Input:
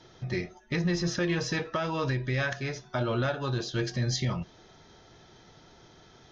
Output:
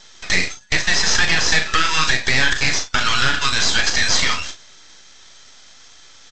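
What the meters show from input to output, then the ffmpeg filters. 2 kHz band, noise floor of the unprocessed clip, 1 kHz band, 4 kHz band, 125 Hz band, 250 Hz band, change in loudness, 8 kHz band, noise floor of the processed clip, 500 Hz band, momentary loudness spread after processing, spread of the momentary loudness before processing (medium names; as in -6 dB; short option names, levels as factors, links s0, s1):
+18.0 dB, -56 dBFS, +13.5 dB, +20.0 dB, -1.0 dB, 0.0 dB, +13.5 dB, no reading, -45 dBFS, +0.5 dB, 5 LU, 6 LU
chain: -filter_complex "[0:a]agate=range=0.158:threshold=0.00708:ratio=16:detection=peak,acrossover=split=2600[s0][s1];[s1]acompressor=threshold=0.00398:ratio=4:attack=1:release=60[s2];[s0][s2]amix=inputs=2:normalize=0,highpass=f=1400:w=0.5412,highpass=f=1400:w=1.3066,aemphasis=mode=production:type=75kf,acompressor=threshold=0.0126:ratio=4,apsyclip=42.2,aresample=16000,aeval=exprs='max(val(0),0)':c=same,aresample=44100,flanger=delay=0.9:depth=4.2:regen=-72:speed=1.5:shape=triangular,asplit=2[s3][s4];[s4]adelay=38,volume=0.376[s5];[s3][s5]amix=inputs=2:normalize=0"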